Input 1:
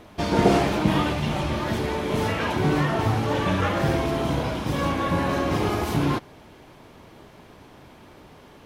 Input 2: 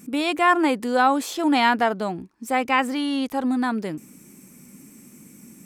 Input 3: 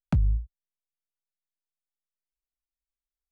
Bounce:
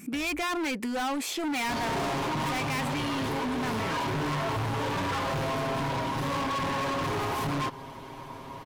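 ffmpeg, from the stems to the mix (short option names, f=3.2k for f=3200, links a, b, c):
-filter_complex "[0:a]equalizer=f=1k:t=o:w=0.26:g=13,aecho=1:1:7.4:0.81,asoftclip=type=tanh:threshold=-20dB,adelay=1500,volume=1.5dB[a];[1:a]equalizer=f=2.3k:w=2.9:g=9,bandreject=f=490:w=12,volume=0dB[b];[2:a]volume=-20dB[c];[a][b][c]amix=inputs=3:normalize=0,volume=24dB,asoftclip=hard,volume=-24dB,acompressor=threshold=-29dB:ratio=6"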